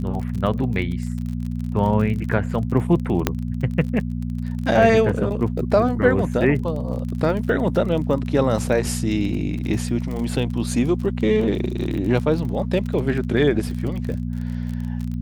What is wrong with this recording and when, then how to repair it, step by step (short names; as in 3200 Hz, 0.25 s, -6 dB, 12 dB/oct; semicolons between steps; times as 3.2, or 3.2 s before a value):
crackle 37/s -28 dBFS
hum 60 Hz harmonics 4 -26 dBFS
3.27 pop -3 dBFS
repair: de-click; de-hum 60 Hz, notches 4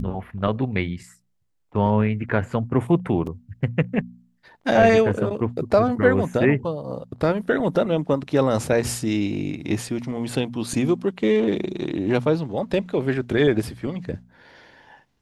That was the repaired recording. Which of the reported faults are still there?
3.27 pop